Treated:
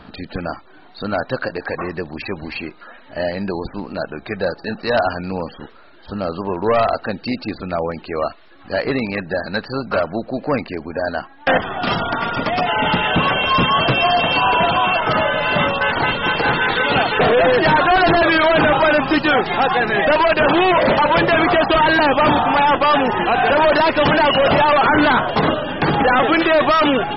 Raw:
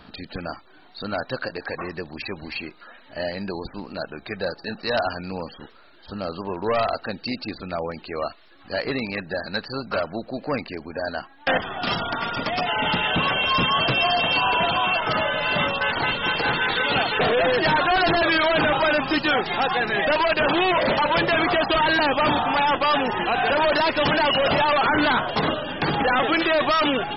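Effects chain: high shelf 3700 Hz -11.5 dB; gain +7 dB

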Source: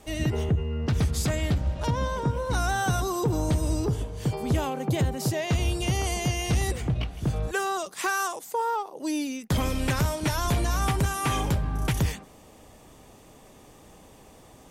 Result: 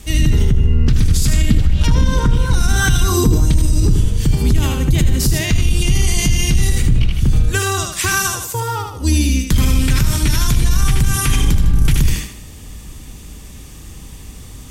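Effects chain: octaver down 2 oct, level +2 dB; passive tone stack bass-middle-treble 6-0-2; thinning echo 77 ms, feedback 40%, high-pass 190 Hz, level -4.5 dB; maximiser +34 dB; 1.49–3.52 LFO bell 1.7 Hz 220–3500 Hz +8 dB; gain -4.5 dB

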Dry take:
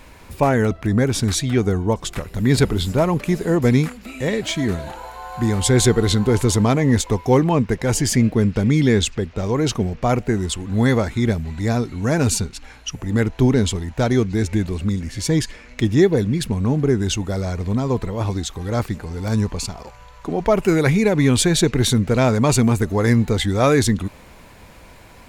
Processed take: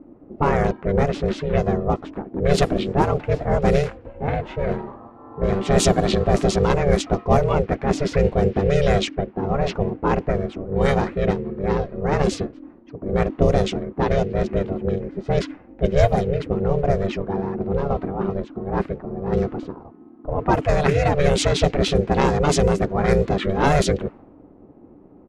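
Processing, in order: harmoniser -5 st -9 dB, -4 st -7 dB; low-pass opened by the level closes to 360 Hz, open at -8.5 dBFS; ring modulator 290 Hz

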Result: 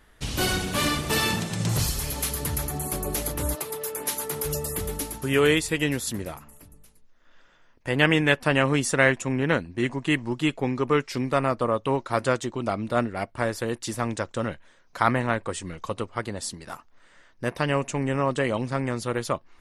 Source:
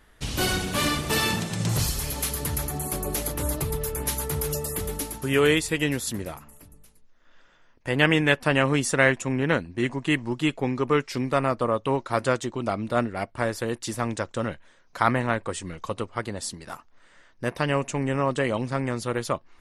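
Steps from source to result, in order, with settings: 3.54–4.44 HPF 480 Hz -> 210 Hz 12 dB/oct

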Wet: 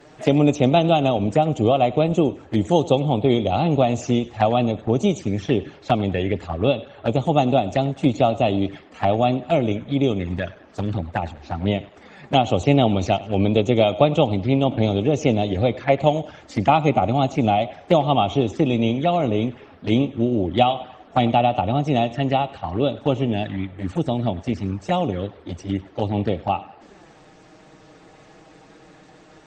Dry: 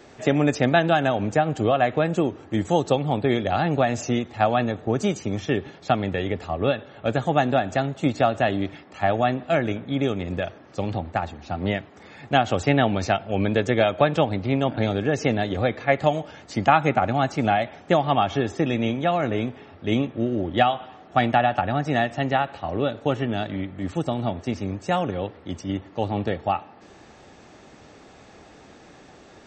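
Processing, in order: envelope flanger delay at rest 7.8 ms, full sweep at -20.5 dBFS; thinning echo 99 ms, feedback 43%, high-pass 420 Hz, level -18 dB; gain +4.5 dB; Opus 24 kbps 48000 Hz

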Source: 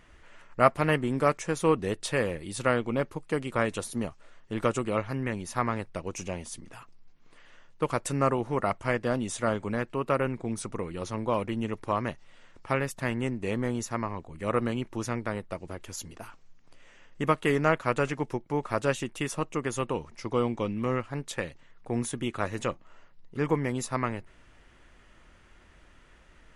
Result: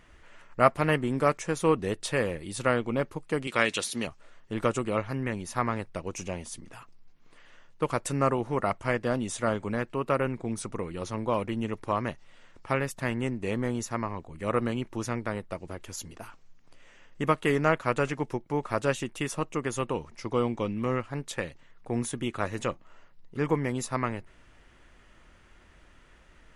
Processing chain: 3.47–4.07 weighting filter D

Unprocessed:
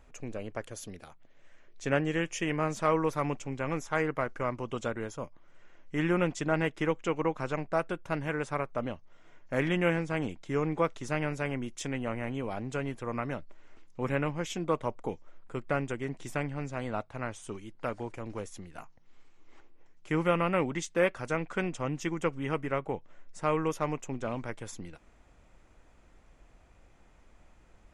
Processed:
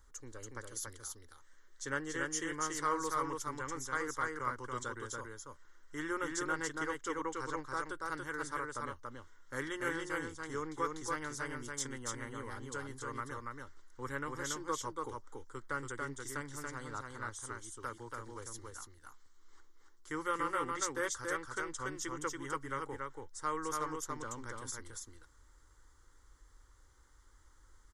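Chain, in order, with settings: passive tone stack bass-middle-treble 5-5-5; fixed phaser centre 680 Hz, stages 6; on a send: echo 0.283 s -3 dB; on the sum: gain +10.5 dB

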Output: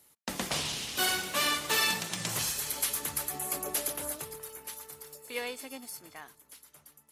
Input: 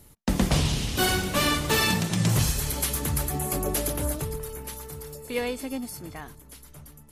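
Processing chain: HPF 930 Hz 6 dB/oct; in parallel at -8 dB: crossover distortion -47 dBFS; on the sum: gain -5 dB

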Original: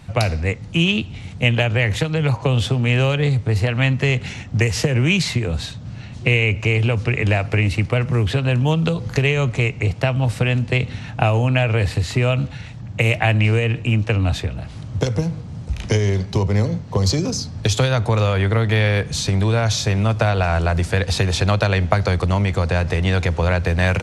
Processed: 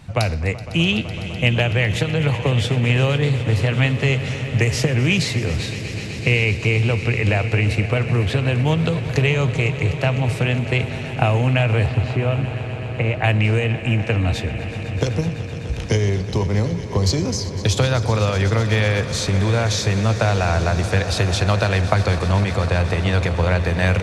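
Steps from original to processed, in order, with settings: 11.86–13.24 tape spacing loss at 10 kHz 27 dB; swelling echo 0.126 s, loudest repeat 5, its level -16.5 dB; gain -1 dB

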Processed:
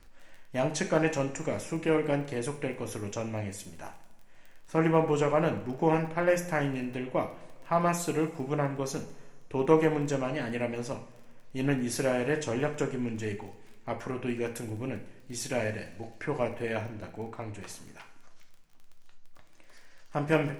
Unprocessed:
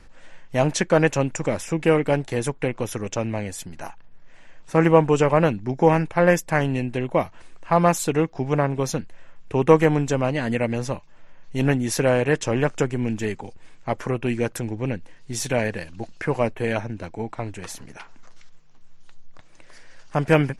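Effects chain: crackle 17/s -33 dBFS; two-slope reverb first 0.48 s, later 2.1 s, from -18 dB, DRR 4.5 dB; gain -9 dB

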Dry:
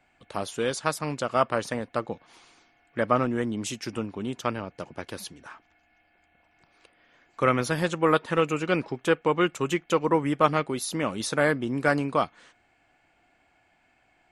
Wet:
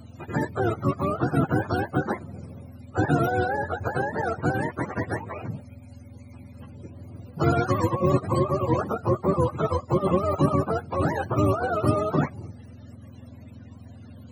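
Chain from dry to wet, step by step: spectrum mirrored in octaves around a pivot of 420 Hz; spectral compressor 2:1

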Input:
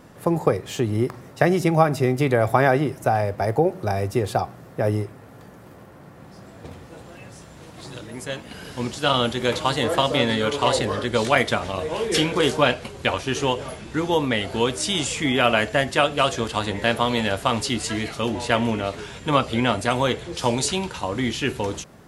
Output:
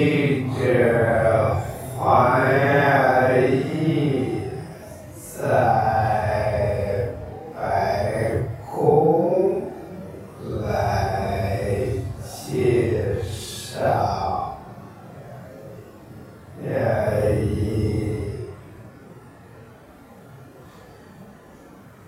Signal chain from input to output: pre-echo 0.245 s -21.5 dB; Paulstretch 6.5×, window 0.05 s, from 2.22

